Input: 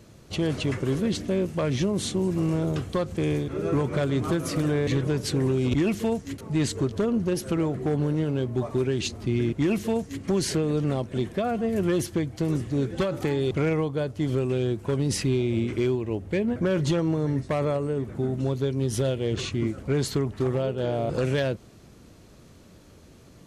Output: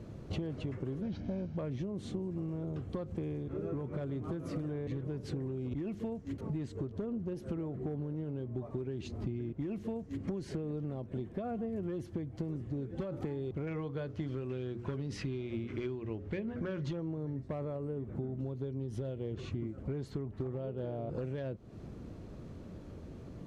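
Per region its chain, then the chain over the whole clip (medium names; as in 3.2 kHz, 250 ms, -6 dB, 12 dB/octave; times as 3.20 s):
1.02–1.57 s: CVSD coder 32 kbps + comb 1.3 ms, depth 54%
13.67–16.93 s: high-order bell 2.7 kHz +8 dB 2.8 oct + hum notches 60/120/180/240/300/360/420/480/540 Hz
whole clip: low-pass 2.9 kHz 6 dB/octave; tilt shelf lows +5 dB, about 920 Hz; compression 16:1, threshold -34 dBFS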